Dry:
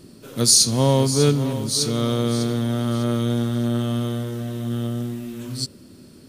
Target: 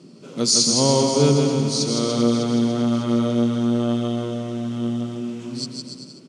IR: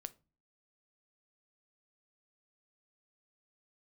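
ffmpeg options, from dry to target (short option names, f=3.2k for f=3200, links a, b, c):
-af "highpass=f=160:w=0.5412,highpass=f=160:w=1.3066,equalizer=f=160:t=q:w=4:g=6,equalizer=f=1.7k:t=q:w=4:g=-8,equalizer=f=3.8k:t=q:w=4:g=-5,lowpass=f=7.1k:w=0.5412,lowpass=f=7.1k:w=1.3066,aecho=1:1:160|288|390.4|472.3|537.9:0.631|0.398|0.251|0.158|0.1"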